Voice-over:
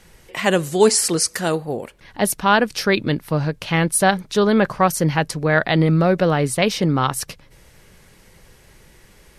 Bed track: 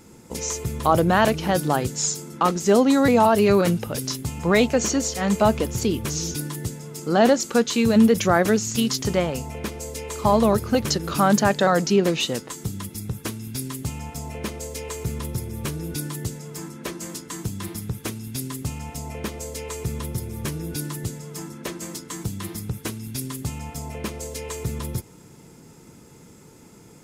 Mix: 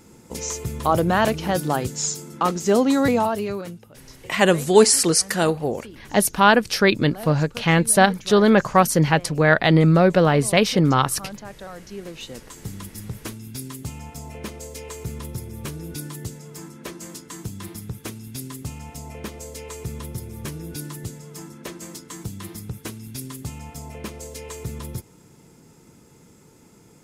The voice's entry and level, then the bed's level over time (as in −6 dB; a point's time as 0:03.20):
3.95 s, +1.0 dB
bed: 0:03.08 −1 dB
0:03.90 −19.5 dB
0:11.87 −19.5 dB
0:12.72 −3.5 dB